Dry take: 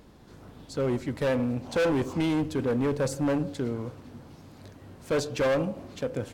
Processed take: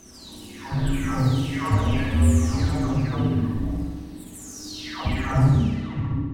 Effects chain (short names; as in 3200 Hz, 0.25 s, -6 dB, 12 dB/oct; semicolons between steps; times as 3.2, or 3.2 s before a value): spectral delay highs early, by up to 0.852 s; frequency shift -400 Hz; flutter echo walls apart 10.7 m, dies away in 1.2 s; gain +5.5 dB